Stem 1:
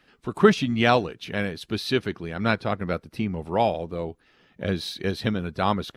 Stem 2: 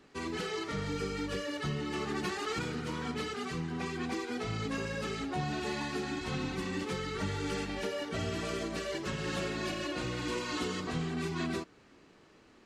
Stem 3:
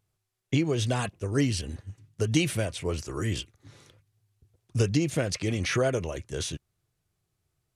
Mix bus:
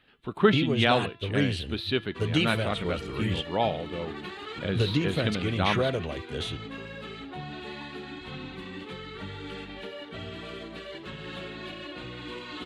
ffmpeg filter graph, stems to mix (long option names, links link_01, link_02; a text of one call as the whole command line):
ffmpeg -i stem1.wav -i stem2.wav -i stem3.wav -filter_complex "[0:a]volume=-4.5dB[link_01];[1:a]adelay=2000,volume=-4.5dB[link_02];[2:a]volume=-1.5dB[link_03];[link_01][link_02][link_03]amix=inputs=3:normalize=0,highshelf=frequency=4500:width_type=q:width=3:gain=-7.5,bandreject=frequency=338.4:width_type=h:width=4,bandreject=frequency=676.8:width_type=h:width=4,bandreject=frequency=1015.2:width_type=h:width=4,bandreject=frequency=1353.6:width_type=h:width=4,bandreject=frequency=1692:width_type=h:width=4,bandreject=frequency=2030.4:width_type=h:width=4,bandreject=frequency=2368.8:width_type=h:width=4,bandreject=frequency=2707.2:width_type=h:width=4,bandreject=frequency=3045.6:width_type=h:width=4,bandreject=frequency=3384:width_type=h:width=4,bandreject=frequency=3722.4:width_type=h:width=4,bandreject=frequency=4060.8:width_type=h:width=4,bandreject=frequency=4399.2:width_type=h:width=4,bandreject=frequency=4737.6:width_type=h:width=4,bandreject=frequency=5076:width_type=h:width=4,bandreject=frequency=5414.4:width_type=h:width=4,bandreject=frequency=5752.8:width_type=h:width=4,bandreject=frequency=6091.2:width_type=h:width=4" out.wav